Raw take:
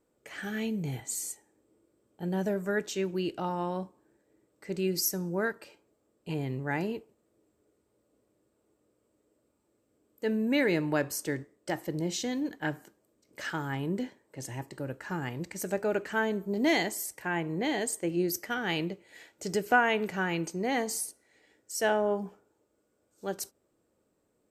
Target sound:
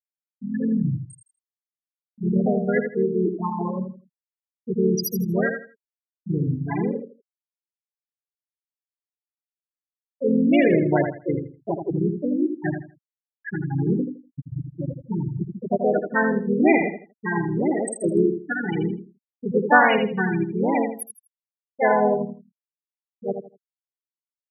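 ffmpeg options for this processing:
-filter_complex "[0:a]asplit=3[a][b][c];[b]asetrate=35002,aresample=44100,atempo=1.25992,volume=-13dB[d];[c]asetrate=52444,aresample=44100,atempo=0.840896,volume=-3dB[e];[a][d][e]amix=inputs=3:normalize=0,equalizer=f=130:w=0.86:g=3,acrossover=split=420|4400[f][g][h];[f]acompressor=mode=upward:threshold=-35dB:ratio=2.5[i];[i][g][h]amix=inputs=3:normalize=0,acrusher=bits=5:mix=0:aa=0.000001,afftfilt=real='re*gte(hypot(re,im),0.141)':imag='im*gte(hypot(re,im),0.141)':win_size=1024:overlap=0.75,aecho=1:1:81|162|243:0.447|0.107|0.0257,volume=6.5dB"

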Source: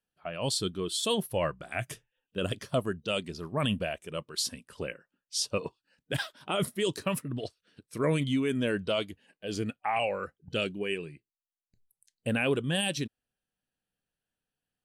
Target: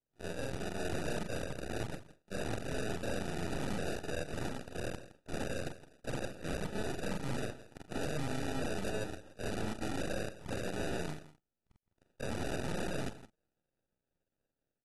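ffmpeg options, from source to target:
-filter_complex "[0:a]afftfilt=real='re':imag='-im':win_size=4096:overlap=0.75,lowpass=7.9k,acompressor=threshold=-36dB:ratio=12,aeval=exprs='max(val(0),0)':c=same,dynaudnorm=f=610:g=3:m=6dB,acrusher=samples=41:mix=1:aa=0.000001,aeval=exprs='0.0237*(abs(mod(val(0)/0.0237+3,4)-2)-1)':c=same,asplit=2[a][b];[b]aecho=0:1:165:0.168[c];[a][c]amix=inputs=2:normalize=0,volume=5dB" -ar 32000 -c:a aac -b:a 32k

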